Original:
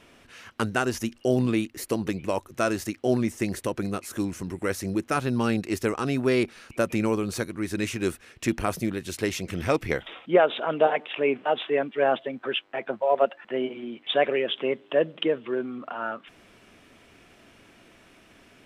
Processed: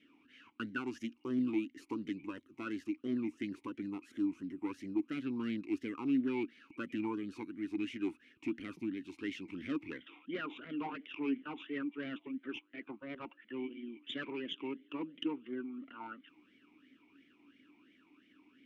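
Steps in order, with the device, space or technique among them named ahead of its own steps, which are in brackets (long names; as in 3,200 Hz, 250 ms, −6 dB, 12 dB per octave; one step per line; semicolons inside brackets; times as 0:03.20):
talk box (tube saturation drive 20 dB, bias 0.55; formant filter swept between two vowels i-u 2.9 Hz)
0:00.87–0:02.27: parametric band 6,700 Hz +4.5 dB 0.98 octaves
level +2.5 dB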